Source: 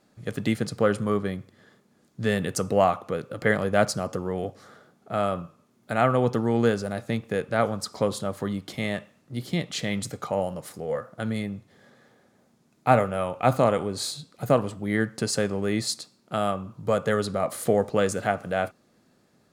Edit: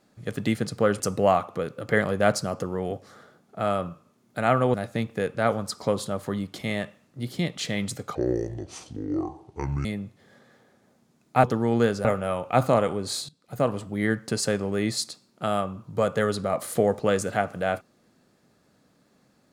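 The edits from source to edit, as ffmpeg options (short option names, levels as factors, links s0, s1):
-filter_complex "[0:a]asplit=8[s0][s1][s2][s3][s4][s5][s6][s7];[s0]atrim=end=1.002[s8];[s1]atrim=start=2.528:end=6.272[s9];[s2]atrim=start=6.878:end=10.294[s10];[s3]atrim=start=10.29:end=11.36,asetpts=PTS-STARTPTS,asetrate=27783,aresample=44100[s11];[s4]atrim=start=11.356:end=12.952[s12];[s5]atrim=start=6.268:end=6.882[s13];[s6]atrim=start=12.948:end=14.19,asetpts=PTS-STARTPTS,afade=t=out:st=1.238:d=0.004:c=hsin:silence=0.0841395[s14];[s7]atrim=start=14.19,asetpts=PTS-STARTPTS,afade=t=in:d=0.52:silence=0.0841395[s15];[s8][s9]acrossfade=d=0.004:c1=hsin:c2=hsin[s16];[s16][s10]acrossfade=d=0.004:c1=hsin:c2=hsin[s17];[s17][s11]acrossfade=d=0.004:c1=hsin:c2=hsin[s18];[s18][s12]acrossfade=d=0.004:c1=hsin:c2=hsin[s19];[s19][s13]acrossfade=d=0.004:c1=hsin:c2=hsin[s20];[s14][s15]concat=n=2:v=0:a=1[s21];[s20][s21]acrossfade=d=0.004:c1=hsin:c2=hsin"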